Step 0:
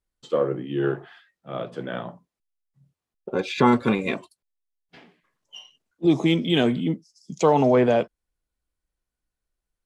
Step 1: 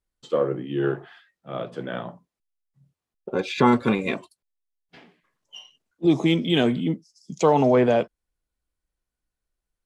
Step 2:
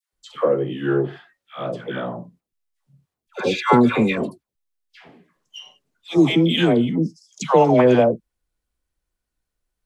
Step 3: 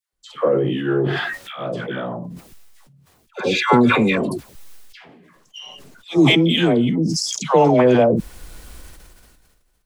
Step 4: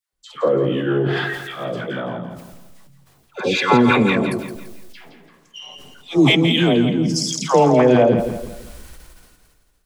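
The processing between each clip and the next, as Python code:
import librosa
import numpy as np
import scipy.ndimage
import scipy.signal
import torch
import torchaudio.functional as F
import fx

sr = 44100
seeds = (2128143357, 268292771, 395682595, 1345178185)

y1 = x
y2 = fx.dispersion(y1, sr, late='lows', ms=130.0, hz=920.0)
y2 = y2 * 10.0 ** (4.0 / 20.0)
y3 = fx.sustainer(y2, sr, db_per_s=30.0)
y4 = fx.echo_feedback(y3, sr, ms=168, feedback_pct=38, wet_db=-9.0)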